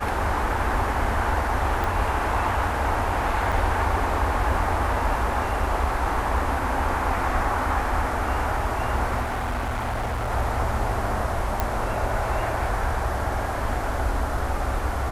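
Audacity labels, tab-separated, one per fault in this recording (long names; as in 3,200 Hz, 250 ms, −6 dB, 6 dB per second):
1.840000	1.840000	click
3.520000	3.530000	drop-out 5.2 ms
9.210000	10.310000	clipping −23.5 dBFS
11.600000	11.600000	click −9 dBFS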